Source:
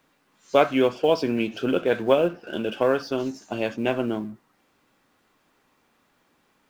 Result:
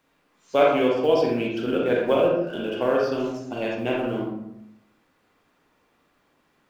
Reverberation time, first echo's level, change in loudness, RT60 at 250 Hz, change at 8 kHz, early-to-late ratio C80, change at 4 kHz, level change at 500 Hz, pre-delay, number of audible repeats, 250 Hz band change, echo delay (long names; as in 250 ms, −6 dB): 0.75 s, no echo audible, +0.5 dB, 1.0 s, can't be measured, 6.0 dB, −1.0 dB, +1.0 dB, 36 ms, no echo audible, 0.0 dB, no echo audible